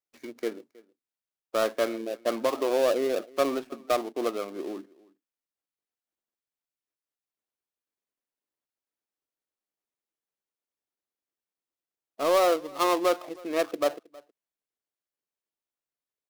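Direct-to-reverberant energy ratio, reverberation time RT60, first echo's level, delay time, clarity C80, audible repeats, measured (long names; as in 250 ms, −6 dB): no reverb audible, no reverb audible, −23.5 dB, 318 ms, no reverb audible, 1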